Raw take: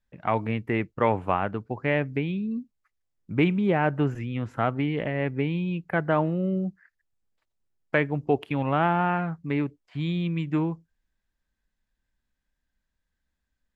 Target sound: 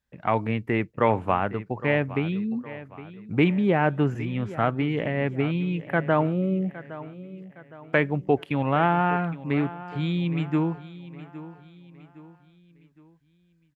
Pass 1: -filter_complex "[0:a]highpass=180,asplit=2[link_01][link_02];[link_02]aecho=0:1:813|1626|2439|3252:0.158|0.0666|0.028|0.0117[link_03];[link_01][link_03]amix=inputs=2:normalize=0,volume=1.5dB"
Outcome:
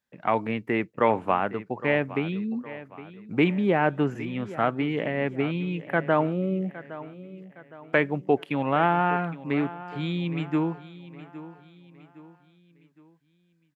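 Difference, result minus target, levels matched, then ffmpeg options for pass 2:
125 Hz band −3.5 dB
-filter_complex "[0:a]highpass=49,asplit=2[link_01][link_02];[link_02]aecho=0:1:813|1626|2439|3252:0.158|0.0666|0.028|0.0117[link_03];[link_01][link_03]amix=inputs=2:normalize=0,volume=1.5dB"

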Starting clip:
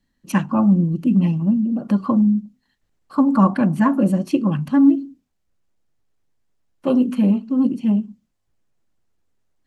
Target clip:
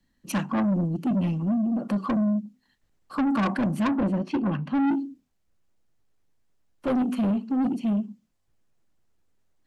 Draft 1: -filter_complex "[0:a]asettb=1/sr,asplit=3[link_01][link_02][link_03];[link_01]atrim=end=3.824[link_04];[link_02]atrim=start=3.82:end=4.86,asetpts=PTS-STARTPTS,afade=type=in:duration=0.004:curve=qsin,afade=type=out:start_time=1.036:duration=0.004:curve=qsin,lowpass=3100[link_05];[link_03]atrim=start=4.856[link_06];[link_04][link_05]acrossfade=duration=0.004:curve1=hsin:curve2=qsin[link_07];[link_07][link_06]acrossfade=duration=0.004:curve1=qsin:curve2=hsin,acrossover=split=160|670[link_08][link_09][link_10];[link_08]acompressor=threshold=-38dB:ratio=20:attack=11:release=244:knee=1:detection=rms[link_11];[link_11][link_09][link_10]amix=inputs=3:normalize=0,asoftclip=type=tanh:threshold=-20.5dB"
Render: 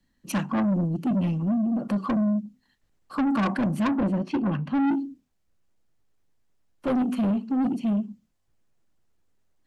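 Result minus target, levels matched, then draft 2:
downward compressor: peak gain reduction −11 dB
-filter_complex "[0:a]asettb=1/sr,asplit=3[link_01][link_02][link_03];[link_01]atrim=end=3.824[link_04];[link_02]atrim=start=3.82:end=4.86,asetpts=PTS-STARTPTS,afade=type=in:duration=0.004:curve=qsin,afade=type=out:start_time=1.036:duration=0.004:curve=qsin,lowpass=3100[link_05];[link_03]atrim=start=4.856[link_06];[link_04][link_05]acrossfade=duration=0.004:curve1=hsin:curve2=qsin[link_07];[link_07][link_06]acrossfade=duration=0.004:curve1=qsin:curve2=hsin,acrossover=split=160|670[link_08][link_09][link_10];[link_08]acompressor=threshold=-49.5dB:ratio=20:attack=11:release=244:knee=1:detection=rms[link_11];[link_11][link_09][link_10]amix=inputs=3:normalize=0,asoftclip=type=tanh:threshold=-20.5dB"

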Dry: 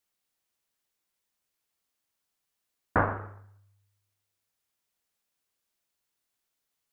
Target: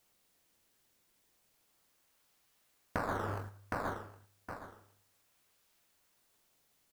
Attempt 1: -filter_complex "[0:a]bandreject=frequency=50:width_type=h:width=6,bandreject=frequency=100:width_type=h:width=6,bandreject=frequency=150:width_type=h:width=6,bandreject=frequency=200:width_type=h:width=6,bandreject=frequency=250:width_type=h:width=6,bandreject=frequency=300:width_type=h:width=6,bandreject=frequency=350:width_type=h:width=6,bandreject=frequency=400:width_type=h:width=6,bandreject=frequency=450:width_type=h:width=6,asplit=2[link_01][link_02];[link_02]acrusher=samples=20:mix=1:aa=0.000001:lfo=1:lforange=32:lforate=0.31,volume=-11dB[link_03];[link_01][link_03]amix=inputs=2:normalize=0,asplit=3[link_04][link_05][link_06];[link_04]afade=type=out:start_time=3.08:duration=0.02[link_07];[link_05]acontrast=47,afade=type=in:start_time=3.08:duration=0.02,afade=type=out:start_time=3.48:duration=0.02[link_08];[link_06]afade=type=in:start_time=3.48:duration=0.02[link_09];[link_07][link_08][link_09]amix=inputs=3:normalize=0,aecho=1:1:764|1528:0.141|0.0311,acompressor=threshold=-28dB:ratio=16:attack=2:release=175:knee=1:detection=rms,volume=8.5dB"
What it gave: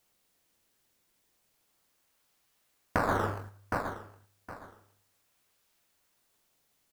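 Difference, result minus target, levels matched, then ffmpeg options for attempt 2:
downward compressor: peak gain reduction −7.5 dB
-filter_complex "[0:a]bandreject=frequency=50:width_type=h:width=6,bandreject=frequency=100:width_type=h:width=6,bandreject=frequency=150:width_type=h:width=6,bandreject=frequency=200:width_type=h:width=6,bandreject=frequency=250:width_type=h:width=6,bandreject=frequency=300:width_type=h:width=6,bandreject=frequency=350:width_type=h:width=6,bandreject=frequency=400:width_type=h:width=6,bandreject=frequency=450:width_type=h:width=6,asplit=2[link_01][link_02];[link_02]acrusher=samples=20:mix=1:aa=0.000001:lfo=1:lforange=32:lforate=0.31,volume=-11dB[link_03];[link_01][link_03]amix=inputs=2:normalize=0,asplit=3[link_04][link_05][link_06];[link_04]afade=type=out:start_time=3.08:duration=0.02[link_07];[link_05]acontrast=47,afade=type=in:start_time=3.08:duration=0.02,afade=type=out:start_time=3.48:duration=0.02[link_08];[link_06]afade=type=in:start_time=3.48:duration=0.02[link_09];[link_07][link_08][link_09]amix=inputs=3:normalize=0,aecho=1:1:764|1528:0.141|0.0311,acompressor=threshold=-36dB:ratio=16:attack=2:release=175:knee=1:detection=rms,volume=8.5dB"

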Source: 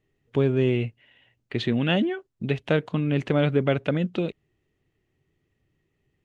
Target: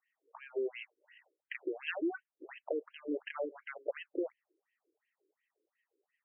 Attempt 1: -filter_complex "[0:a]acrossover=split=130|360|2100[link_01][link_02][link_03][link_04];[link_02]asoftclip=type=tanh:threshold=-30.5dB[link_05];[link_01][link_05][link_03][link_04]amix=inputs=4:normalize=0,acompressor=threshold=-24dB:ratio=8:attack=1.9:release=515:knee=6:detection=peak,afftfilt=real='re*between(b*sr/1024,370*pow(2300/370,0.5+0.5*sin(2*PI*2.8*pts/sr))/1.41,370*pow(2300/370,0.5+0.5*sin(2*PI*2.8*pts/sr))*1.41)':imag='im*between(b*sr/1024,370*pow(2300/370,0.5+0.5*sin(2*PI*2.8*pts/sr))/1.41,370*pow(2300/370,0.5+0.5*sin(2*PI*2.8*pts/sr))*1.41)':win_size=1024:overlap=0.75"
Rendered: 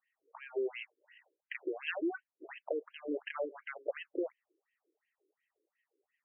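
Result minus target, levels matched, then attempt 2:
soft clipping: distortion +13 dB
-filter_complex "[0:a]acrossover=split=130|360|2100[link_01][link_02][link_03][link_04];[link_02]asoftclip=type=tanh:threshold=-19dB[link_05];[link_01][link_05][link_03][link_04]amix=inputs=4:normalize=0,acompressor=threshold=-24dB:ratio=8:attack=1.9:release=515:knee=6:detection=peak,afftfilt=real='re*between(b*sr/1024,370*pow(2300/370,0.5+0.5*sin(2*PI*2.8*pts/sr))/1.41,370*pow(2300/370,0.5+0.5*sin(2*PI*2.8*pts/sr))*1.41)':imag='im*between(b*sr/1024,370*pow(2300/370,0.5+0.5*sin(2*PI*2.8*pts/sr))/1.41,370*pow(2300/370,0.5+0.5*sin(2*PI*2.8*pts/sr))*1.41)':win_size=1024:overlap=0.75"

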